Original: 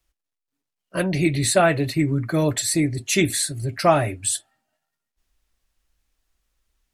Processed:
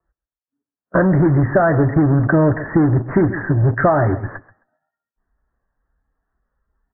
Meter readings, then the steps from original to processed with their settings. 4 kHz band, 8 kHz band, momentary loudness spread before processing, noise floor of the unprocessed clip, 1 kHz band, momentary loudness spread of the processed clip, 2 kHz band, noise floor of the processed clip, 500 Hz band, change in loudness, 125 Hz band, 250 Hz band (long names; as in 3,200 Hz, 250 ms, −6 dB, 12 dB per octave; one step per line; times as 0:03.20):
below −40 dB, below −40 dB, 7 LU, −84 dBFS, +3.5 dB, 5 LU, +3.5 dB, below −85 dBFS, +4.5 dB, +5.0 dB, +9.0 dB, +7.0 dB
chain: high-pass filter 41 Hz 6 dB per octave
noise reduction from a noise print of the clip's start 11 dB
in parallel at −4.5 dB: fuzz pedal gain 29 dB, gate −38 dBFS
on the sum: Butterworth low-pass 1,800 Hz 96 dB per octave
on a send: repeating echo 132 ms, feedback 20%, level −18 dB
on the sum: downward compressor 6 to 1, threshold −18 dBFS, peak gain reduction 10 dB
level +6.5 dB